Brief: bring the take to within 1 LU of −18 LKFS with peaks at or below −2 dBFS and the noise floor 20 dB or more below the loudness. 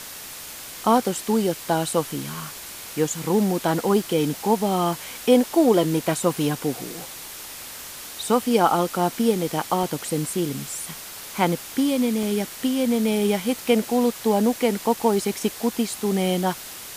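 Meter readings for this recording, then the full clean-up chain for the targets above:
number of dropouts 2; longest dropout 2.5 ms; background noise floor −38 dBFS; target noise floor −43 dBFS; integrated loudness −23.0 LKFS; sample peak −5.0 dBFS; target loudness −18.0 LKFS
→ repair the gap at 0:09.83/0:12.23, 2.5 ms
noise reduction from a noise print 6 dB
level +5 dB
brickwall limiter −2 dBFS

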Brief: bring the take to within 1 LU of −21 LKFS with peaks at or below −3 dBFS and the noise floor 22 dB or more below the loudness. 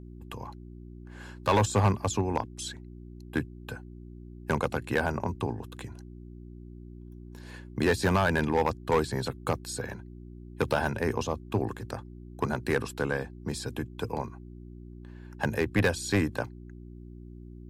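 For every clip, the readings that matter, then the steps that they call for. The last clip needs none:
share of clipped samples 0.6%; peaks flattened at −17.5 dBFS; mains hum 60 Hz; hum harmonics up to 360 Hz; level of the hum −42 dBFS; integrated loudness −30.0 LKFS; sample peak −17.5 dBFS; target loudness −21.0 LKFS
→ clipped peaks rebuilt −17.5 dBFS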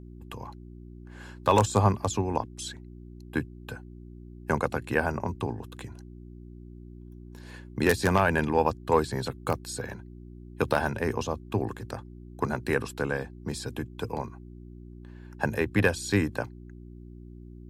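share of clipped samples 0.0%; mains hum 60 Hz; hum harmonics up to 360 Hz; level of the hum −42 dBFS
→ hum removal 60 Hz, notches 6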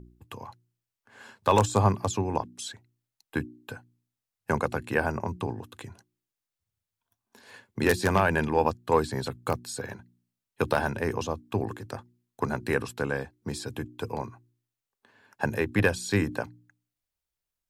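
mains hum none found; integrated loudness −28.5 LKFS; sample peak −8.0 dBFS; target loudness −21.0 LKFS
→ level +7.5 dB
brickwall limiter −3 dBFS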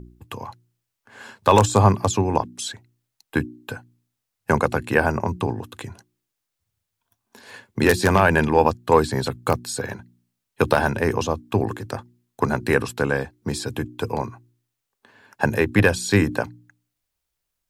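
integrated loudness −21.5 LKFS; sample peak −3.0 dBFS; background noise floor −81 dBFS

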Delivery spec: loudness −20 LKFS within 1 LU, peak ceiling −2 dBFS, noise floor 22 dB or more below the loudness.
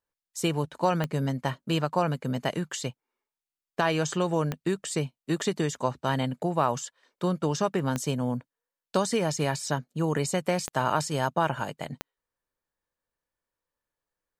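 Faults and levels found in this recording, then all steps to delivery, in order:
number of clicks 5; integrated loudness −28.5 LKFS; sample peak −11.0 dBFS; target loudness −20.0 LKFS
→ click removal
level +8.5 dB

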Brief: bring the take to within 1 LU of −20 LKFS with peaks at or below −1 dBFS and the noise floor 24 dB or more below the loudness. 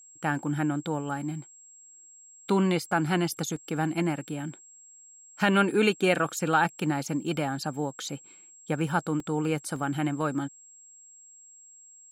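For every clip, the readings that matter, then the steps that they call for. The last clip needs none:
number of dropouts 3; longest dropout 2.4 ms; interfering tone 7,600 Hz; level of the tone −50 dBFS; integrated loudness −28.0 LKFS; sample peak −9.5 dBFS; target loudness −20.0 LKFS
→ repair the gap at 0:03.56/0:09.20/0:09.76, 2.4 ms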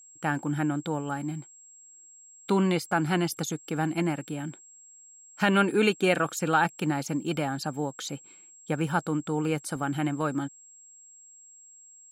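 number of dropouts 0; interfering tone 7,600 Hz; level of the tone −50 dBFS
→ notch filter 7,600 Hz, Q 30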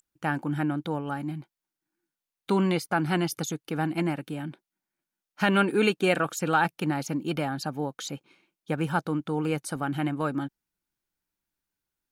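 interfering tone none found; integrated loudness −28.0 LKFS; sample peak −9.5 dBFS; target loudness −20.0 LKFS
→ level +8 dB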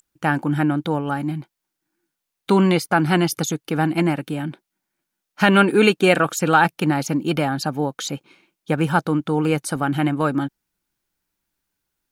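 integrated loudness −20.0 LKFS; sample peak −1.5 dBFS; background noise floor −81 dBFS

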